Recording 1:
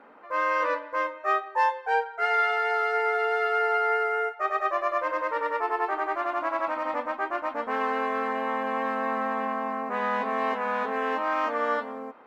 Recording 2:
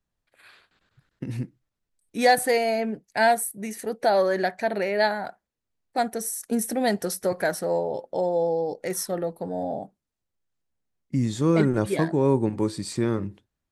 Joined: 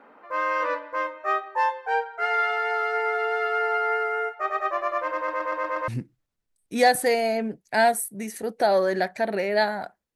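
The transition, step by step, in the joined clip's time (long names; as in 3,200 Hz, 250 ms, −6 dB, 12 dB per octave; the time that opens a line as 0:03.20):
recording 1
0:05.16: stutter in place 0.12 s, 6 plays
0:05.88: continue with recording 2 from 0:01.31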